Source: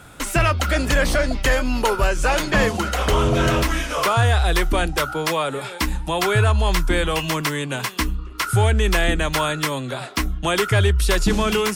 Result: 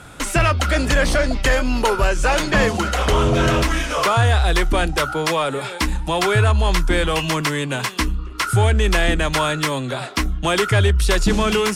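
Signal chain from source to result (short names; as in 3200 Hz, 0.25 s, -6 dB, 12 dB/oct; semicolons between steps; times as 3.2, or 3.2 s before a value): LPF 11000 Hz 12 dB/oct; in parallel at -6 dB: soft clip -23.5 dBFS, distortion -7 dB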